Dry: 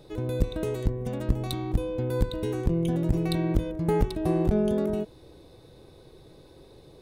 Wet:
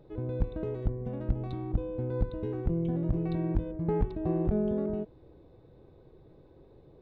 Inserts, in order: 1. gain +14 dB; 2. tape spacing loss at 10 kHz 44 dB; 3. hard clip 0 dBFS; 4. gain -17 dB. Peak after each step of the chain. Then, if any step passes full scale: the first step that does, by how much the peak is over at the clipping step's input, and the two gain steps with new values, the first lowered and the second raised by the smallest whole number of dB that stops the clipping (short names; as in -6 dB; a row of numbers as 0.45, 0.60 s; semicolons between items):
+6.0, +4.5, 0.0, -17.0 dBFS; step 1, 4.5 dB; step 1 +9 dB, step 4 -12 dB